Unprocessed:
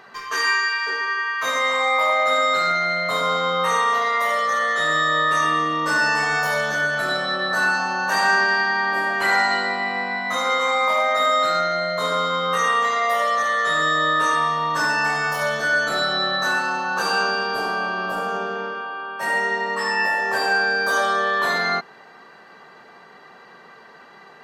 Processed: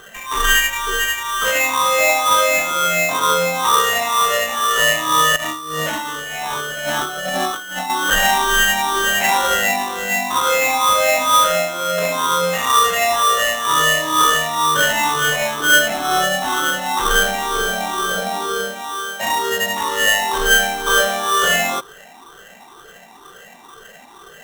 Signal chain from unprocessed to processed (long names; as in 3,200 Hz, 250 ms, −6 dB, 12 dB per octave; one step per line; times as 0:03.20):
rippled gain that drifts along the octave scale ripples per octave 0.59, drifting +2.1 Hz, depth 18 dB
0:05.36–0:07.90: compressor whose output falls as the input rises −25 dBFS, ratio −1
sample-rate reduction 4,700 Hz, jitter 0%